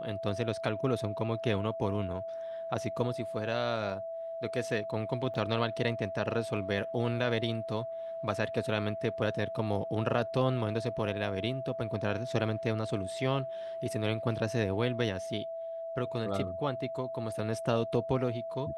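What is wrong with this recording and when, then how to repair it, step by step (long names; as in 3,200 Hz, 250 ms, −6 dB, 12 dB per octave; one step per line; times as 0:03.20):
whistle 660 Hz −36 dBFS
0:05.34: drop-out 3.2 ms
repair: notch filter 660 Hz, Q 30
repair the gap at 0:05.34, 3.2 ms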